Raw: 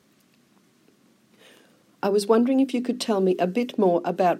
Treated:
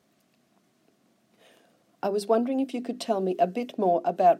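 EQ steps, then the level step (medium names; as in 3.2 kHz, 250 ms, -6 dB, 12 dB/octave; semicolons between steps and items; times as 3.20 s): peaking EQ 680 Hz +11.5 dB 0.33 oct; -7.0 dB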